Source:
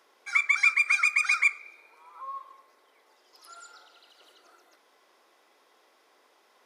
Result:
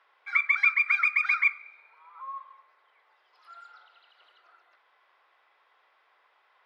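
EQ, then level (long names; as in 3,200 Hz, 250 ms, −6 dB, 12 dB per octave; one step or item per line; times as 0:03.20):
high-pass filter 1,100 Hz 12 dB per octave
high-frequency loss of the air 430 metres
+5.0 dB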